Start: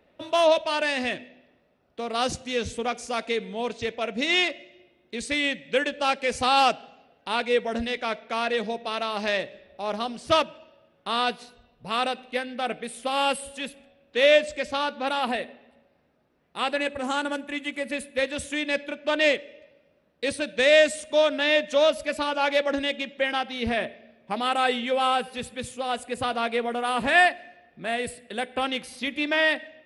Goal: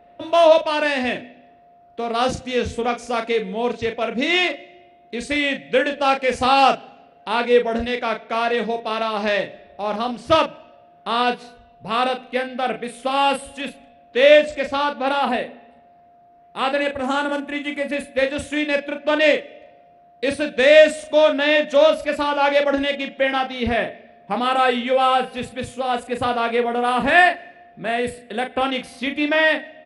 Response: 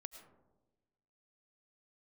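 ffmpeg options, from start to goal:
-filter_complex "[0:a]highshelf=f=3400:g=-9,asplit=2[s0][s1];[s1]adelay=37,volume=0.447[s2];[s0][s2]amix=inputs=2:normalize=0,aeval=exprs='val(0)+0.00178*sin(2*PI*700*n/s)':c=same,volume=2"

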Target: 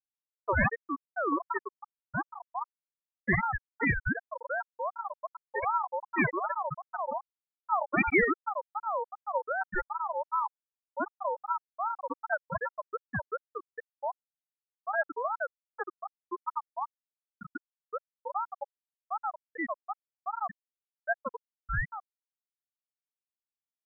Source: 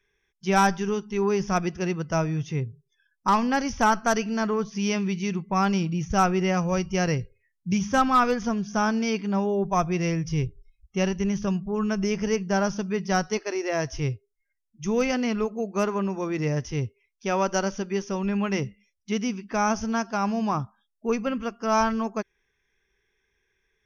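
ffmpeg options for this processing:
-filter_complex "[0:a]asplit=7[s0][s1][s2][s3][s4][s5][s6];[s1]adelay=80,afreqshift=-88,volume=0.562[s7];[s2]adelay=160,afreqshift=-176,volume=0.282[s8];[s3]adelay=240,afreqshift=-264,volume=0.141[s9];[s4]adelay=320,afreqshift=-352,volume=0.07[s10];[s5]adelay=400,afreqshift=-440,volume=0.0351[s11];[s6]adelay=480,afreqshift=-528,volume=0.0176[s12];[s0][s7][s8][s9][s10][s11][s12]amix=inputs=7:normalize=0,afftfilt=real='re*gte(hypot(re,im),0.631)':imag='im*gte(hypot(re,im),0.631)':win_size=1024:overlap=0.75,aeval=exprs='val(0)*sin(2*PI*930*n/s+930*0.25/2.6*sin(2*PI*2.6*n/s))':c=same"

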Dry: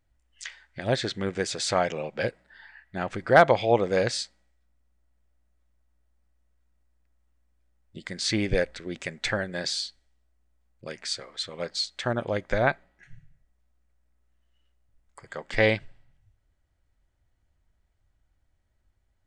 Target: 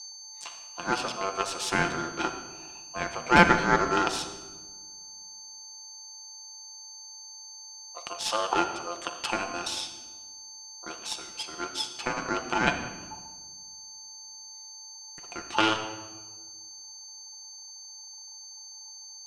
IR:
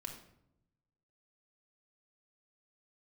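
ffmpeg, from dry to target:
-filter_complex "[0:a]aeval=exprs='val(0)+0.0141*sin(2*PI*5400*n/s)':c=same,aeval=exprs='0.631*(cos(1*acos(clip(val(0)/0.631,-1,1)))-cos(1*PI/2))+0.141*(cos(4*acos(clip(val(0)/0.631,-1,1)))-cos(4*PI/2))+0.0141*(cos(8*acos(clip(val(0)/0.631,-1,1)))-cos(8*PI/2))':c=same,aeval=exprs='val(0)*sin(2*PI*870*n/s)':c=same,asplit=2[s0][s1];[1:a]atrim=start_sample=2205,asetrate=23373,aresample=44100,lowshelf=f=88:g=-11.5[s2];[s1][s2]afir=irnorm=-1:irlink=0,volume=1.26[s3];[s0][s3]amix=inputs=2:normalize=0,volume=0.447"

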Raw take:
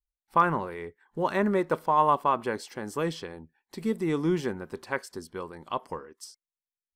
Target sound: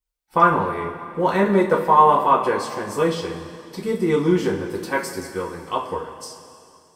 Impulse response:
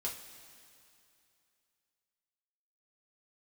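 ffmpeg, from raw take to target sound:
-filter_complex "[0:a]asettb=1/sr,asplit=3[s0][s1][s2];[s0]atrim=end=4.694[s3];[s1]atrim=start=4.69:end=5.23,asetpts=PTS-STARTPTS,afade=t=in:d=0.004:c=qsin,afade=t=out:st=0.536:d=0.004:c=qsin,highshelf=f=7300:g=10.5[s4];[s2]atrim=start=5.226[s5];[s3][s4]acrossfade=d=0.004:c1=hsin:c2=qsin[s6];[s6][s5]acrossfade=d=0.004:c1=qsin:c2=hsin[s7];[1:a]atrim=start_sample=2205[s8];[s7][s8]afir=irnorm=-1:irlink=0,volume=2.24"

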